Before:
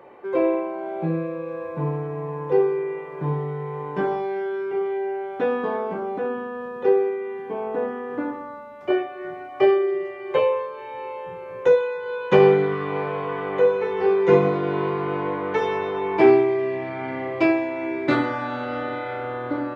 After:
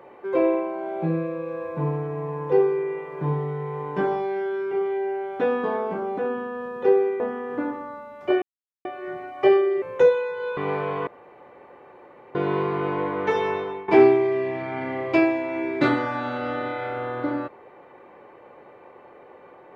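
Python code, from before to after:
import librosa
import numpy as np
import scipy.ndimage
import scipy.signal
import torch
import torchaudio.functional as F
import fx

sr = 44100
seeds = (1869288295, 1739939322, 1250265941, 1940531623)

y = fx.edit(x, sr, fx.cut(start_s=7.2, length_s=0.6),
    fx.insert_silence(at_s=9.02, length_s=0.43),
    fx.cut(start_s=9.99, length_s=1.49),
    fx.cut(start_s=12.23, length_s=0.61),
    fx.room_tone_fill(start_s=13.34, length_s=1.28),
    fx.fade_out_to(start_s=15.81, length_s=0.34, floor_db=-18.0), tone=tone)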